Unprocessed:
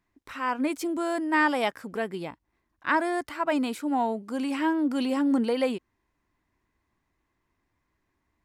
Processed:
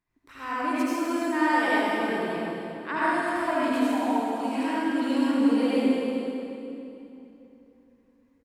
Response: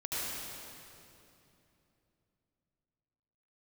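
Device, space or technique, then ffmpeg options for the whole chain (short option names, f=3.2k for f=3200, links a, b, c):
cave: -filter_complex "[0:a]asettb=1/sr,asplit=3[a][b][c];[a]atrim=end=3.744[d];[b]atrim=start=3.74:end=4.89,asetpts=PTS-STARTPTS,afade=t=in:d=0.004:c=qsin,afade=t=out:st=1.146:d=0.004:c=qsin,lowshelf=f=420:g=-5.5[e];[c]atrim=start=4.886[f];[d][e]acrossfade=d=0.004:c1=hsin:c2=qsin[g];[g][f]acrossfade=d=0.004:c1=qsin:c2=hsin,aecho=1:1:298:0.266[h];[1:a]atrim=start_sample=2205[i];[h][i]afir=irnorm=-1:irlink=0,volume=-4dB"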